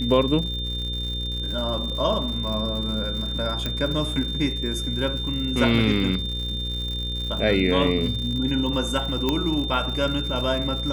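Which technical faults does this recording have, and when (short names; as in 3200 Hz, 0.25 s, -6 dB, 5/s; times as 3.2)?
buzz 60 Hz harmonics 9 -30 dBFS
crackle 130/s -31 dBFS
tone 3600 Hz -29 dBFS
3.66 pop -12 dBFS
9.29 pop -9 dBFS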